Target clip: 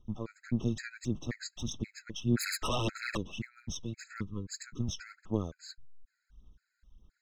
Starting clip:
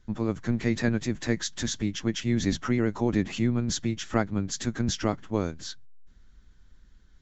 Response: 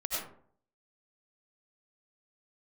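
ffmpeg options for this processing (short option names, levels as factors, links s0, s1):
-filter_complex "[0:a]asettb=1/sr,asplit=3[s0][s1][s2];[s0]atrim=end=0.594[s3];[s1]atrim=start=0.59:end=1.09,asetpts=PTS-STARTPTS,afade=t=in:d=0.004:c=qsin,afade=t=out:st=0.496:d=0.004:c=qsin,highshelf=f=5200:g=6.5[s4];[s2]atrim=start=1.086[s5];[s3][s4]acrossfade=d=0.004:c1=hsin:c2=qsin[s6];[s6][s5]acrossfade=d=0.004:c1=qsin:c2=hsin,asettb=1/sr,asplit=3[s7][s8][s9];[s7]atrim=end=2.374[s10];[s8]atrim=start=2.37:end=3.17,asetpts=PTS-STARTPTS,afade=t=in:d=0.004:c=qsin,afade=t=out:st=0.796:d=0.004:c=qsin,aeval=exprs='0.112*sin(PI/2*3.98*val(0)/0.112)':c=same[s11];[s9]atrim=start=3.166[s12];[s10][s11]acrossfade=d=0.004:c1=hsin:c2=qsin[s13];[s13][s12]acrossfade=d=0.004:c1=qsin:c2=hsin,aphaser=in_gain=1:out_gain=1:delay=2.1:decay=0.57:speed=1.7:type=sinusoidal,asplit=3[s14][s15][s16];[s14]afade=t=out:st=4.09:d=0.02[s17];[s15]asuperstop=centerf=680:order=8:qfactor=1.4,afade=t=in:st=4.09:d=0.02,afade=t=out:st=4.79:d=0.02[s18];[s16]afade=t=in:st=4.79:d=0.02[s19];[s17][s18][s19]amix=inputs=3:normalize=0,afftfilt=real='re*gt(sin(2*PI*1.9*pts/sr)*(1-2*mod(floor(b*sr/1024/1300),2)),0)':imag='im*gt(sin(2*PI*1.9*pts/sr)*(1-2*mod(floor(b*sr/1024/1300),2)),0)':win_size=1024:overlap=0.75,volume=0.376"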